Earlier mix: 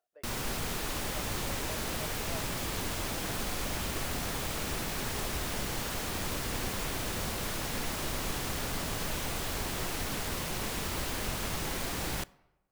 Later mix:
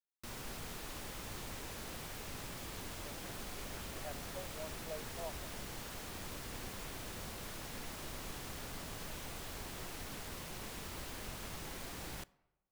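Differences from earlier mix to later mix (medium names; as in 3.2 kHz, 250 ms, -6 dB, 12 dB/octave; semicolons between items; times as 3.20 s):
speech: entry +2.90 s; background -11.0 dB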